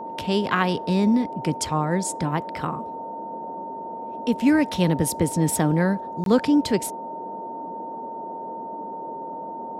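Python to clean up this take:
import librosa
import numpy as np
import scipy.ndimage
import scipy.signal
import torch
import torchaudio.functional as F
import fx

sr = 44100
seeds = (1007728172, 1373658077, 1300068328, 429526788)

y = fx.notch(x, sr, hz=910.0, q=30.0)
y = fx.fix_interpolate(y, sr, at_s=(6.24,), length_ms=22.0)
y = fx.noise_reduce(y, sr, print_start_s=3.64, print_end_s=4.14, reduce_db=30.0)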